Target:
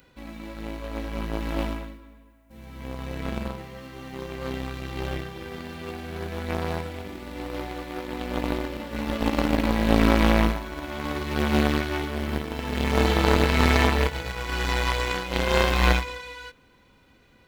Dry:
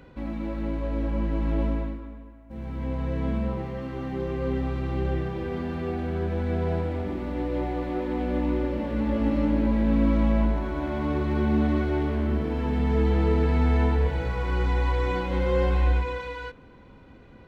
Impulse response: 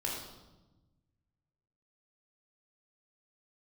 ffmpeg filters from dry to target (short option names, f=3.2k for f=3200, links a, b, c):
-af "aeval=exprs='0.266*(cos(1*acos(clip(val(0)/0.266,-1,1)))-cos(1*PI/2))+0.075*(cos(3*acos(clip(val(0)/0.266,-1,1)))-cos(3*PI/2))':c=same,crystalizer=i=8.5:c=0,volume=6dB"